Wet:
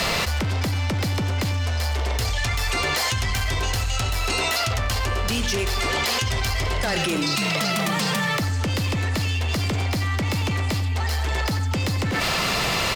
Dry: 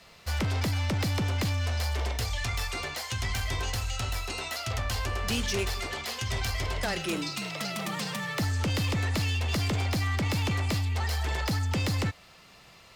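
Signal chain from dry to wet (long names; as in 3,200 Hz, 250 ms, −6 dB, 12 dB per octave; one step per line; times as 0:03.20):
in parallel at −7 dB: soft clipping −33 dBFS, distortion −11 dB
on the sum: far-end echo of a speakerphone 90 ms, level −7 dB
envelope flattener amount 100%
level +1.5 dB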